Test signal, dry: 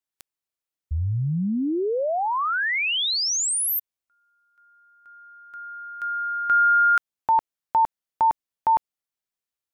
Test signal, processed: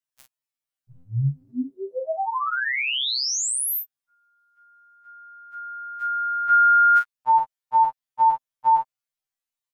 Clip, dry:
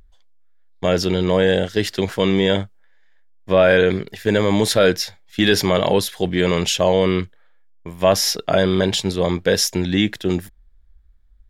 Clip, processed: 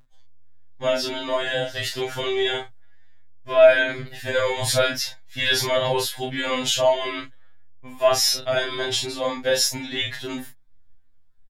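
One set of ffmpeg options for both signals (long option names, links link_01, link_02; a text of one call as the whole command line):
ffmpeg -i in.wav -filter_complex "[0:a]equalizer=frequency=350:width_type=o:width=0.7:gain=-11.5,asplit=2[link_01][link_02];[link_02]adelay=36,volume=-5dB[link_03];[link_01][link_03]amix=inputs=2:normalize=0,afftfilt=real='re*2.45*eq(mod(b,6),0)':imag='im*2.45*eq(mod(b,6),0)':win_size=2048:overlap=0.75" out.wav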